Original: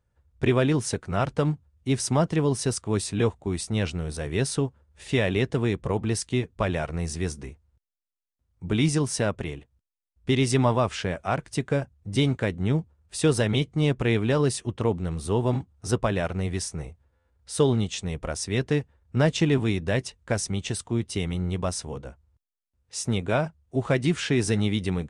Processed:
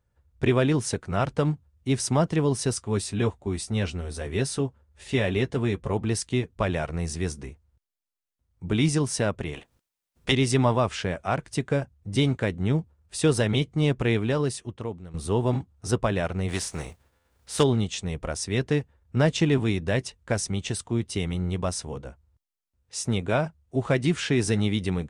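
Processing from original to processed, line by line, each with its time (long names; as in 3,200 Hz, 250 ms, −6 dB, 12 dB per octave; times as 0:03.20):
0:02.77–0:05.93: notch comb filter 160 Hz
0:09.53–0:10.31: ceiling on every frequency bin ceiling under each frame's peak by 22 dB
0:14.05–0:15.14: fade out, to −15.5 dB
0:16.48–0:17.62: compressing power law on the bin magnitudes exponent 0.66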